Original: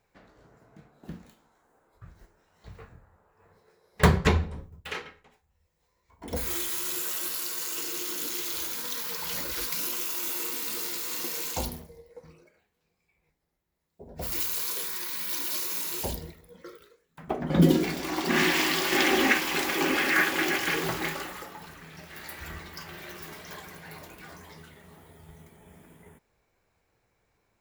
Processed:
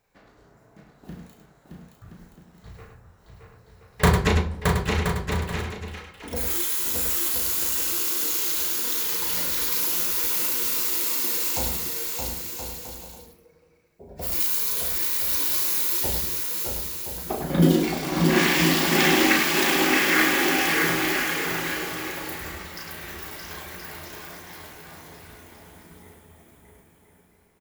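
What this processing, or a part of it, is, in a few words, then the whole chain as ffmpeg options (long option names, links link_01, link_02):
slapback doubling: -filter_complex "[0:a]highshelf=frequency=7000:gain=5,aecho=1:1:620|1023|1285|1455|1566:0.631|0.398|0.251|0.158|0.1,asplit=3[link_01][link_02][link_03];[link_02]adelay=35,volume=-5dB[link_04];[link_03]adelay=102,volume=-6.5dB[link_05];[link_01][link_04][link_05]amix=inputs=3:normalize=0"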